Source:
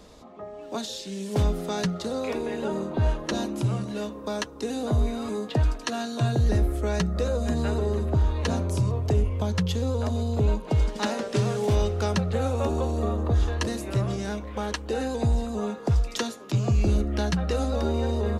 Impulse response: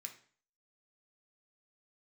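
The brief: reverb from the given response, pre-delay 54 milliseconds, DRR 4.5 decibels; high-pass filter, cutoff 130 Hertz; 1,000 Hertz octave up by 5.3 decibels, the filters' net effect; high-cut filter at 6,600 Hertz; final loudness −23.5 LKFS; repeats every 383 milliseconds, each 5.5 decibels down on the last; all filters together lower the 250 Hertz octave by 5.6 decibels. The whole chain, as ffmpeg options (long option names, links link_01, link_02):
-filter_complex "[0:a]highpass=130,lowpass=6600,equalizer=frequency=250:width_type=o:gain=-7,equalizer=frequency=1000:width_type=o:gain=7.5,aecho=1:1:383|766|1149|1532|1915|2298|2681:0.531|0.281|0.149|0.079|0.0419|0.0222|0.0118,asplit=2[link_01][link_02];[1:a]atrim=start_sample=2205,adelay=54[link_03];[link_02][link_03]afir=irnorm=-1:irlink=0,volume=0.5dB[link_04];[link_01][link_04]amix=inputs=2:normalize=0,volume=4.5dB"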